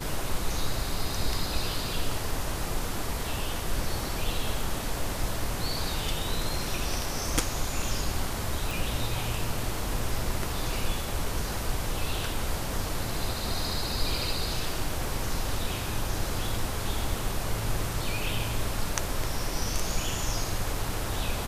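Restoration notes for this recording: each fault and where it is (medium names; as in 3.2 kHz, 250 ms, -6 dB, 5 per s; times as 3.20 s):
8.71 s: pop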